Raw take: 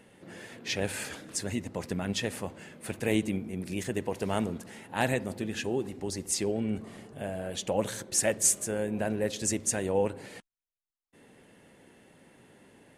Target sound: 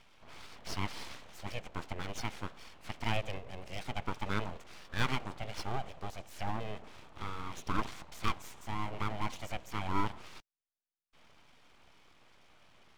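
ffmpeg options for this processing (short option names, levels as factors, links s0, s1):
-filter_complex "[0:a]highpass=280,equalizer=f=770:t=q:w=4:g=4,equalizer=f=1300:t=q:w=4:g=-7,equalizer=f=2800:t=q:w=4:g=6,equalizer=f=4900:t=q:w=4:g=-8,lowpass=f=6300:w=0.5412,lowpass=f=6300:w=1.3066,acrossover=split=3000[s0][s1];[s1]acompressor=threshold=0.00282:ratio=4:attack=1:release=60[s2];[s0][s2]amix=inputs=2:normalize=0,aeval=exprs='abs(val(0))':c=same,volume=0.841"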